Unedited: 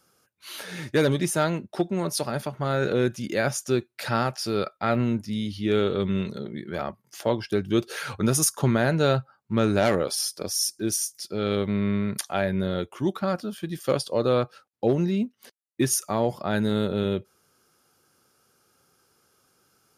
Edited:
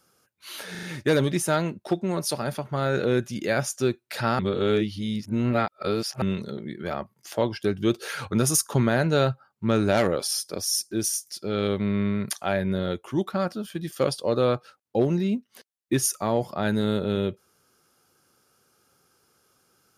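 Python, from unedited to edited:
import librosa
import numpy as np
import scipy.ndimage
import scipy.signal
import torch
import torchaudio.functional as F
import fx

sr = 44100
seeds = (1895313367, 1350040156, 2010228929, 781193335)

y = fx.edit(x, sr, fx.stutter(start_s=0.71, slice_s=0.04, count=4),
    fx.reverse_span(start_s=4.27, length_s=1.83), tone=tone)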